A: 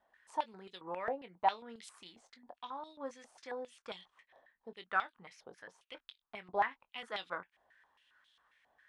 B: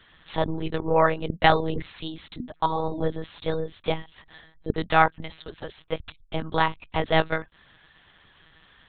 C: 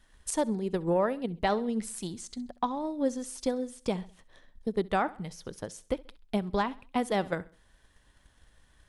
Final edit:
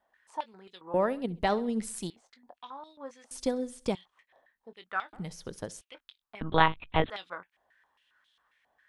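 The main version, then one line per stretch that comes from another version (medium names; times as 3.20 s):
A
0.94–2.10 s: from C
3.31–3.95 s: from C
5.13–5.81 s: from C
6.41–7.10 s: from B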